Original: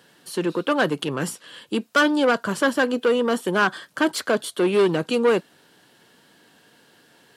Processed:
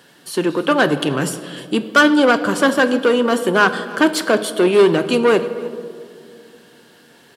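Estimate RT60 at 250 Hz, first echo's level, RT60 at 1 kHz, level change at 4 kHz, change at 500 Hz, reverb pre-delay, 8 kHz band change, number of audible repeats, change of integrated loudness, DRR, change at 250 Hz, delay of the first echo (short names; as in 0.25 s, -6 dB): 3.1 s, -21.5 dB, 1.9 s, +6.0 dB, +5.5 dB, 3 ms, +6.0 dB, 1, +6.0 dB, 9.5 dB, +6.5 dB, 0.307 s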